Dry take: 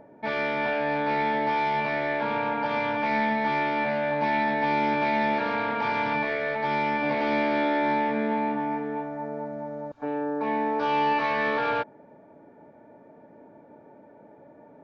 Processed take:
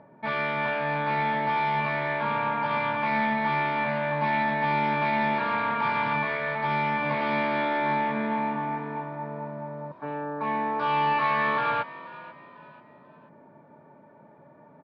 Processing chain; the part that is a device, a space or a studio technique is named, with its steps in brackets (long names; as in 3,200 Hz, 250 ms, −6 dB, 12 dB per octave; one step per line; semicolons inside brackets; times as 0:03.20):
frequency-shifting delay pedal into a guitar cabinet (echo with shifted repeats 488 ms, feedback 37%, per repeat +46 Hz, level −18 dB; loudspeaker in its box 93–4,300 Hz, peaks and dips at 150 Hz +7 dB, 300 Hz −7 dB, 470 Hz −7 dB, 750 Hz −5 dB, 1,100 Hz +8 dB)